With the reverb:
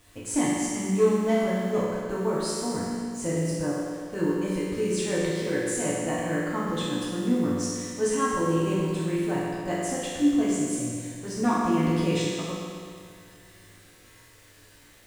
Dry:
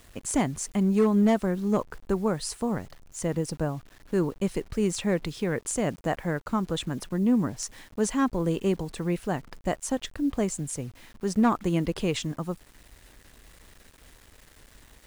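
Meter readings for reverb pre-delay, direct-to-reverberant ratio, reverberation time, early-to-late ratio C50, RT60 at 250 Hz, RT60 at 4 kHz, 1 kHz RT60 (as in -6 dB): 4 ms, -8.5 dB, 2.1 s, -2.0 dB, 2.1 s, 2.0 s, 2.1 s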